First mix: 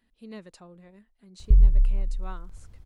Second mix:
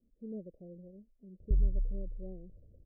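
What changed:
background: add tilt EQ +2.5 dB/octave; master: add steep low-pass 600 Hz 72 dB/octave

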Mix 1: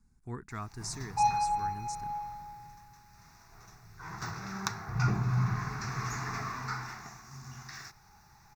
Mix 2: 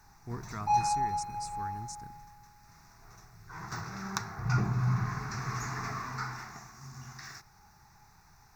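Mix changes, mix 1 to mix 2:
background: entry -0.50 s; master: add peaking EQ 3.1 kHz -3.5 dB 0.79 oct

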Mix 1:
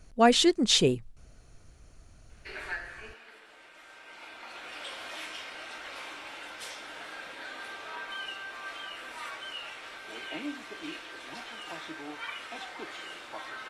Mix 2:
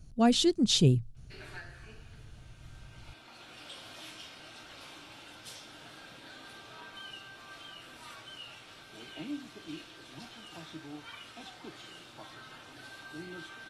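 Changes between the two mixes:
background: entry -1.15 s; master: add graphic EQ 125/500/1000/2000/8000 Hz +11/-7/-6/-11/-4 dB

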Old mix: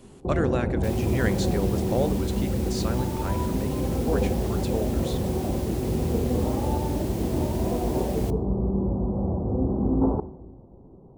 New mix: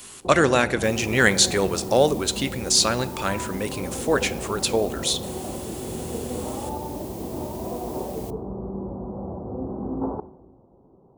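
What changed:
speech +11.0 dB; second sound -10.5 dB; master: add tilt EQ +3 dB/octave

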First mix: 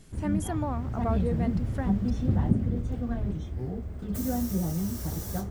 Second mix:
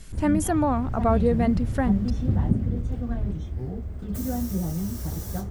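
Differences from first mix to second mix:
speech +9.0 dB; master: add bass shelf 72 Hz +6.5 dB

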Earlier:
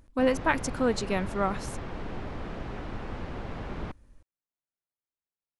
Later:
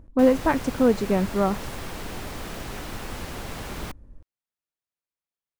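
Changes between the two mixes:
speech: add tilt shelf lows +9 dB, about 1.3 kHz; background: remove tape spacing loss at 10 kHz 32 dB

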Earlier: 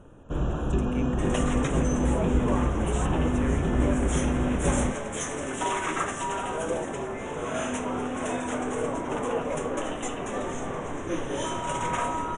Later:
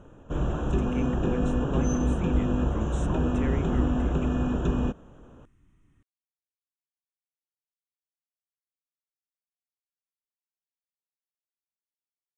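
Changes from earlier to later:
speech: add low-pass 5.4 kHz 12 dB/octave; second sound: muted

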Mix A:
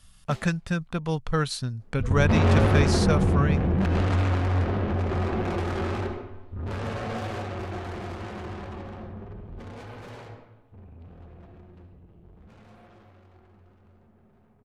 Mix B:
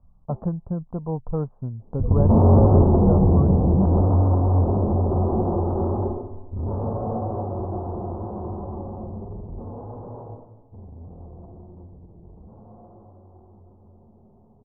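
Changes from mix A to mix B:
second sound +5.5 dB; master: add steep low-pass 1 kHz 48 dB/octave

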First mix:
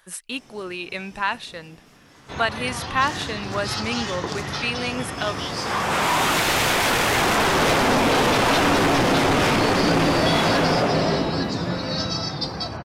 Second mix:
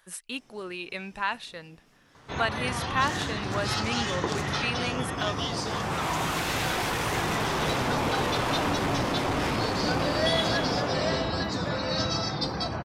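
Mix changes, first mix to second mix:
speech -5.0 dB; first sound: add peaking EQ 4.9 kHz -5 dB 0.43 oct; second sound -10.5 dB

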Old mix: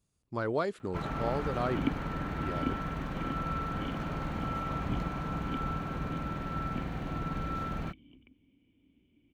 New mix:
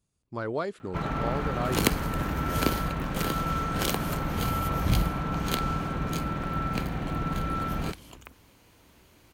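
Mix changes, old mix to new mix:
first sound +5.0 dB; second sound: remove cascade formant filter i

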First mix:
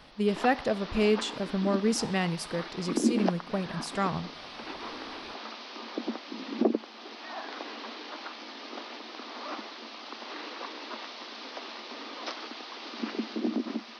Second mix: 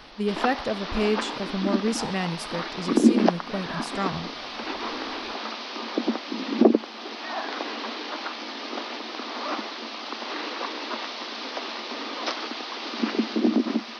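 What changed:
background +8.0 dB; master: add bass shelf 60 Hz +8 dB

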